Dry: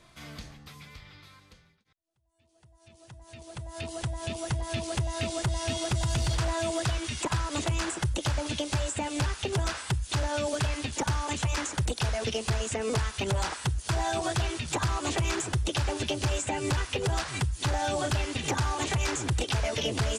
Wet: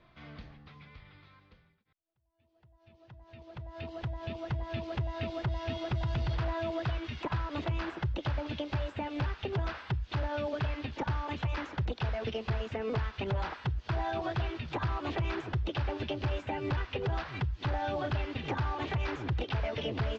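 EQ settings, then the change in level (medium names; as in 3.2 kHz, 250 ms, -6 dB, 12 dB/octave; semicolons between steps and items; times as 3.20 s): Bessel low-pass 3 kHz, order 6; distance through air 82 m; -3.5 dB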